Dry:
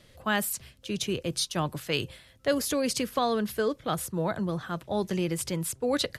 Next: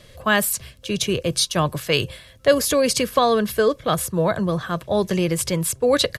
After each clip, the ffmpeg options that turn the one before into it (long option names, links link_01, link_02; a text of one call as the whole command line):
ffmpeg -i in.wav -af "aecho=1:1:1.8:0.32,volume=8.5dB" out.wav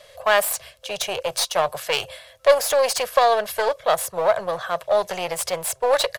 ffmpeg -i in.wav -af "aeval=exprs='clip(val(0),-1,0.0531)':channel_layout=same,lowshelf=frequency=410:width_type=q:width=3:gain=-14" out.wav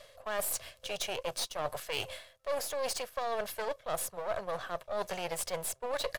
ffmpeg -i in.wav -af "aeval=exprs='if(lt(val(0),0),0.447*val(0),val(0))':channel_layout=same,areverse,acompressor=threshold=-29dB:ratio=6,areverse,volume=-2.5dB" out.wav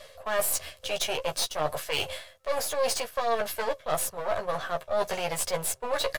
ffmpeg -i in.wav -filter_complex "[0:a]asplit=2[link_01][link_02];[link_02]adelay=13,volume=-4dB[link_03];[link_01][link_03]amix=inputs=2:normalize=0,volume=5dB" out.wav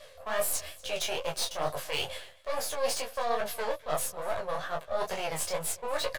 ffmpeg -i in.wav -af "flanger=delay=19.5:depth=7.1:speed=2.3,aecho=1:1:242:0.0794" out.wav